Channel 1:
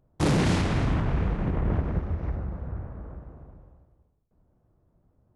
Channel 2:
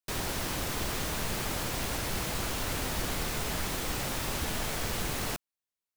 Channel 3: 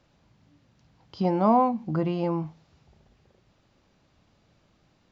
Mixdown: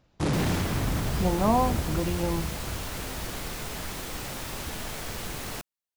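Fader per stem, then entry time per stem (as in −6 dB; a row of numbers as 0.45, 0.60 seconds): −3.5, −2.5, −3.0 decibels; 0.00, 0.25, 0.00 seconds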